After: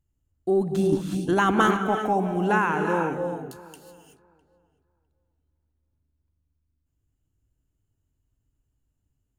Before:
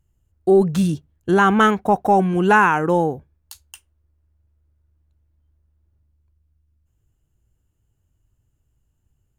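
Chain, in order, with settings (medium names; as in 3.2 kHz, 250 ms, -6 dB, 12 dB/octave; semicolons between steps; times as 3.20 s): peaking EQ 270 Hz +8.5 dB 0.3 oct; filtered feedback delay 655 ms, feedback 17%, low-pass 2.4 kHz, level -21 dB; gated-style reverb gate 400 ms rising, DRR 4 dB; 0.92–1.77 s: harmonic-percussive split percussive +9 dB; trim -9 dB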